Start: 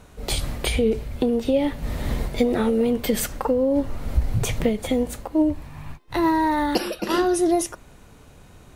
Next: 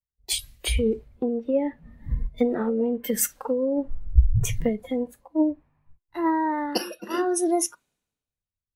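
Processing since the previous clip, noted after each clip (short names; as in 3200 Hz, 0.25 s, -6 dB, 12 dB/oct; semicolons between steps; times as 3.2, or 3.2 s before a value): spectral noise reduction 14 dB; three-band expander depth 100%; gain -4 dB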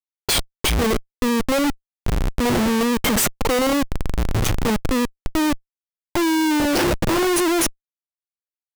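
in parallel at +1 dB: compressor 20:1, threshold -30 dBFS, peak gain reduction 22 dB; on the sum: Schmitt trigger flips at -28.5 dBFS; gain +5 dB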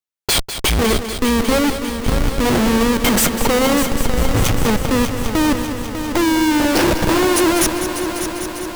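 multi-head echo 0.199 s, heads first and third, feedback 73%, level -10.5 dB; gain +3 dB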